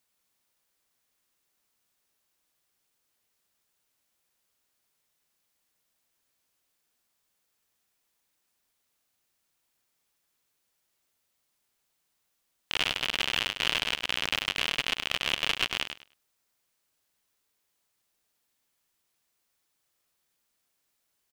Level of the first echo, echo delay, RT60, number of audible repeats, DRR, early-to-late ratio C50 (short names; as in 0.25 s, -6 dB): -8.0 dB, 0.102 s, none, 2, none, none